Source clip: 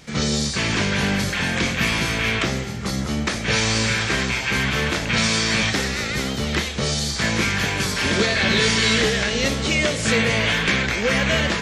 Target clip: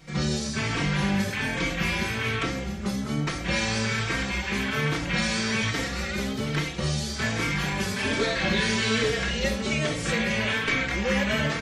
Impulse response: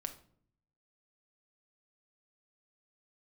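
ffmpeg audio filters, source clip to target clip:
-filter_complex "[0:a]equalizer=f=5.9k:t=o:w=2.3:g=-4,asplit=2[a][b];[b]adelay=90,highpass=300,lowpass=3.4k,asoftclip=type=hard:threshold=-18dB,volume=-19dB[c];[a][c]amix=inputs=2:normalize=0[d];[1:a]atrim=start_sample=2205[e];[d][e]afir=irnorm=-1:irlink=0,asplit=2[f][g];[g]adelay=3.9,afreqshift=1.2[h];[f][h]amix=inputs=2:normalize=1"

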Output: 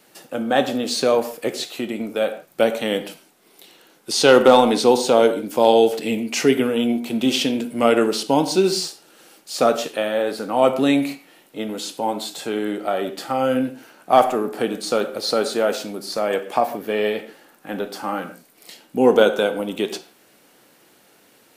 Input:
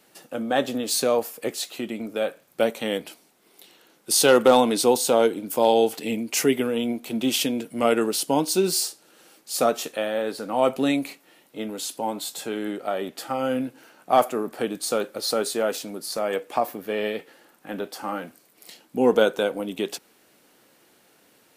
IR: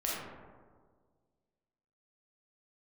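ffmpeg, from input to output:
-filter_complex "[0:a]acrossover=split=6300[a][b];[b]acompressor=threshold=-43dB:ratio=4:attack=1:release=60[c];[a][c]amix=inputs=2:normalize=0,asplit=2[d][e];[1:a]atrim=start_sample=2205,afade=t=out:st=0.24:d=0.01,atrim=end_sample=11025,asetrate=52920,aresample=44100[f];[e][f]afir=irnorm=-1:irlink=0,volume=-11dB[g];[d][g]amix=inputs=2:normalize=0,volume=2.5dB"

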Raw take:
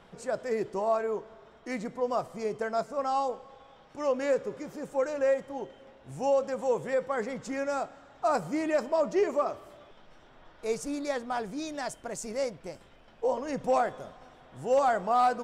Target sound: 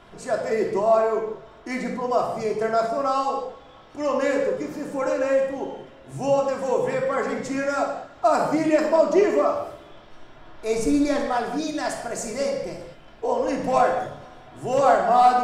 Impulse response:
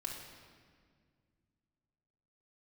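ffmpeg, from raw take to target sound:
-filter_complex "[0:a]asettb=1/sr,asplit=3[a][b][c];[a]atrim=end=10.734[d];[b]atrim=start=10.73:end=11.2,asetpts=PTS-STARTPTS,afade=t=in:d=0.004:c=qsin,afade=t=out:st=0.466:d=0.004:c=qsin,lowshelf=f=210:g=10[e];[c]atrim=start=11.196[f];[d][e]acrossfade=d=0.004:c1=hsin:c2=qsin[g];[g][f]acrossfade=d=0.004:c1=qsin:c2=hsin[h];[1:a]atrim=start_sample=2205,afade=t=out:st=0.27:d=0.01,atrim=end_sample=12348[i];[h][i]afir=irnorm=-1:irlink=0,volume=8.5dB"

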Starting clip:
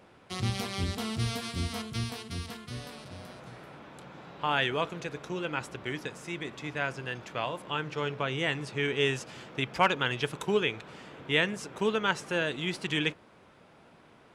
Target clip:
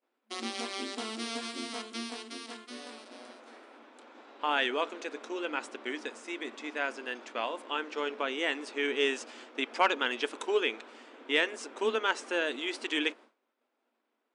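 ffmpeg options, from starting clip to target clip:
-af "agate=range=-33dB:threshold=-43dB:ratio=3:detection=peak,afftfilt=real='re*between(b*sr/4096,220,10000)':imag='im*between(b*sr/4096,220,10000)':win_size=4096:overlap=0.75,acontrast=47,volume=-6.5dB"

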